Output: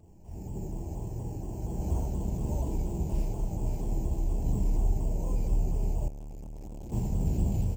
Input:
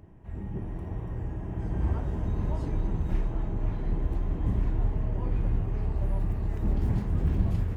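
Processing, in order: careless resampling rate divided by 6×, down filtered, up hold; hum notches 50/100/150/200/250/300/350/400 Hz; multi-tap echo 60/75/80/232/585 ms -3.5/-9.5/-3.5/-16.5/-11.5 dB; 6.08–6.92 s: valve stage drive 36 dB, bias 0.45; high-order bell 1.5 kHz -16 dB 1.1 oct; vibrato with a chosen wave saw down 4.2 Hz, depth 100 cents; trim -3 dB

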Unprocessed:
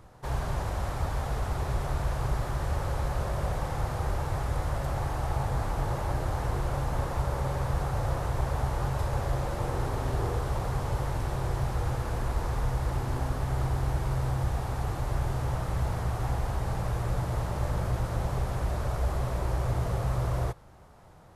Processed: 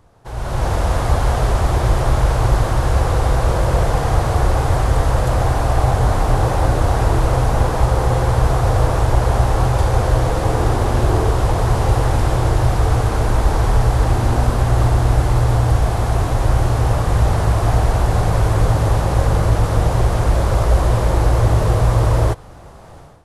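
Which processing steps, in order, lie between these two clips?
level rider gain up to 15.5 dB; speed mistake 48 kHz file played as 44.1 kHz

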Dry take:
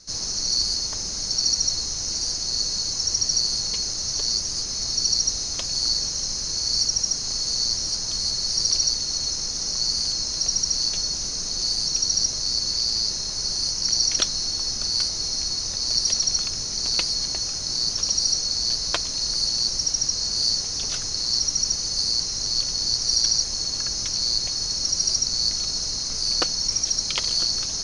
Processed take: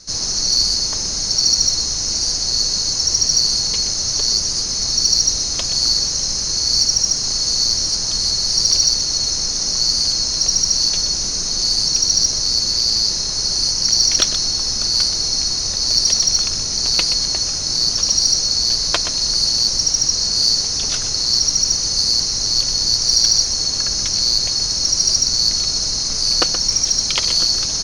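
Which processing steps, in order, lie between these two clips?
in parallel at -10.5 dB: saturation -16.5 dBFS, distortion -17 dB; on the sum: delay 125 ms -10.5 dB; trim +4.5 dB

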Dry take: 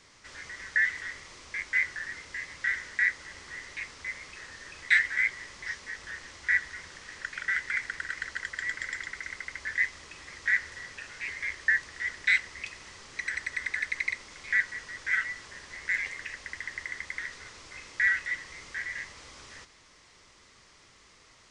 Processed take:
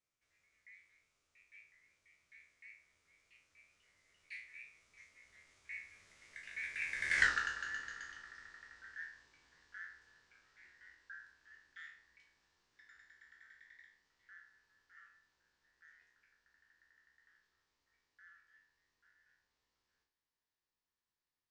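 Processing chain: spectral sustain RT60 0.50 s; Doppler pass-by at 7.23 s, 42 m/s, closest 3 m; trim +4.5 dB

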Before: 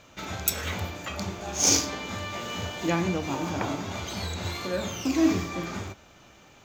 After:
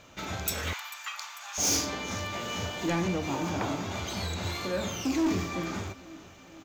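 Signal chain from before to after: on a send: feedback delay 445 ms, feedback 59%, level -22 dB; on the sum: saturation -22 dBFS, distortion -10 dB; 0.73–1.58 s: steep high-pass 940 Hz 36 dB/octave

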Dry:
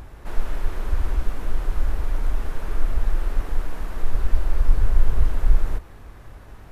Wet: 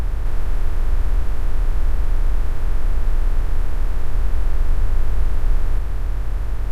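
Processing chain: spectral levelling over time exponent 0.2; trim -5 dB

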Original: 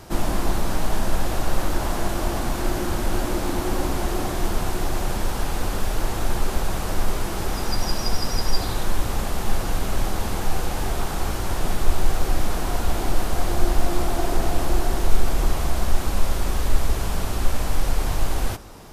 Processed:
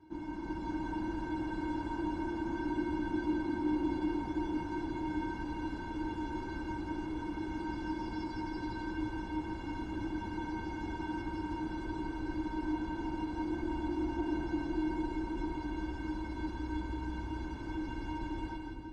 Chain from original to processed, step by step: high-pass 53 Hz 12 dB/octave; bass shelf 130 Hz +9.5 dB; level rider gain up to 5.5 dB; tape spacing loss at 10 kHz 33 dB; feedback comb 310 Hz, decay 0.15 s, harmonics odd, mix 100%; two-band feedback delay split 550 Hz, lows 336 ms, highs 170 ms, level -4 dB

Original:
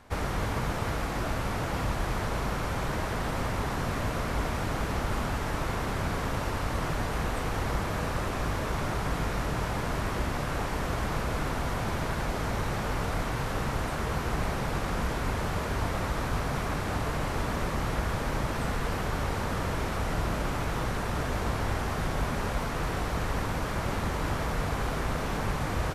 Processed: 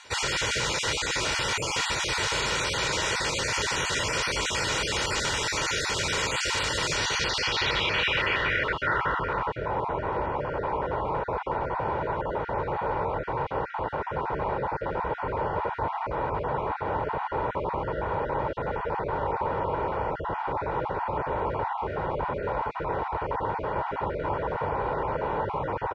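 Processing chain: random holes in the spectrogram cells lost 21%; in parallel at -12 dB: saturation -30.5 dBFS, distortion -11 dB; on the sum: comb 2.1 ms, depth 57%; low-pass sweep 7.3 kHz -> 850 Hz, 6.85–9.68 s; frequency weighting D

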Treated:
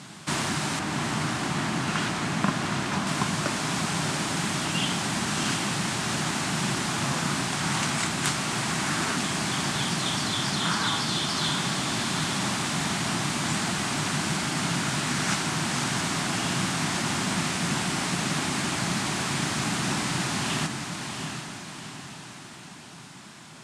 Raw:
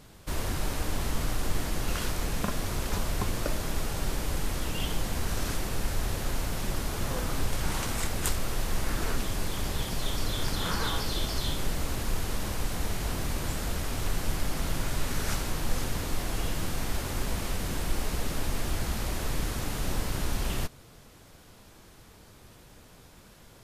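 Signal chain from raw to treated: tracing distortion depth 0.2 ms; 0.79–3.07 s: treble shelf 3.7 kHz -9 dB; gain riding 0.5 s; Chebyshev band-pass 150–8800 Hz, order 3; peaking EQ 490 Hz -14.5 dB 0.57 oct; echo that smears into a reverb 710 ms, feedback 50%, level -6 dB; trim +9 dB

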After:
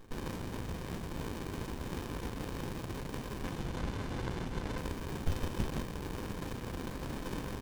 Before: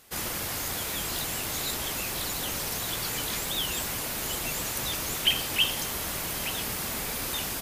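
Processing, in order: 3.41–4.78 s: Chebyshev low-pass 3.6 kHz, order 5; in parallel at -1 dB: compressor with a negative ratio -37 dBFS, ratio -0.5; on the sum: feedback comb 510 Hz, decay 0.15 s, harmonics all, mix 80%; on a send: multi-tap echo 157/312 ms -6/-18.5 dB; on the sum: sliding maximum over 65 samples; trim +5.5 dB

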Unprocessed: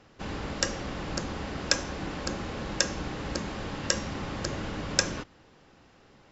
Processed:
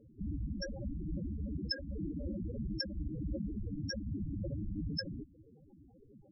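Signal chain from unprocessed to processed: compression 2:1, threshold -37 dBFS, peak gain reduction 11 dB; treble shelf 4.9 kHz +4 dB; loudest bins only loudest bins 4; trim +6 dB

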